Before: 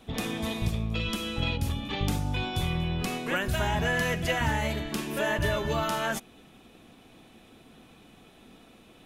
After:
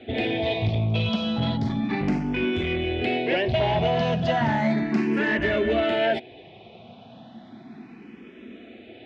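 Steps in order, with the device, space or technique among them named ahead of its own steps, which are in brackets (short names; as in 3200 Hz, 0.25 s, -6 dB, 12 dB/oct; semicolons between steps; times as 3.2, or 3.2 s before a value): barber-pole phaser into a guitar amplifier (endless phaser +0.34 Hz; soft clip -28 dBFS, distortion -14 dB; speaker cabinet 97–4100 Hz, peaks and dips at 110 Hz +6 dB, 230 Hz +8 dB, 370 Hz +7 dB, 670 Hz +8 dB, 1200 Hz -6 dB, 2100 Hz +5 dB); gain +8 dB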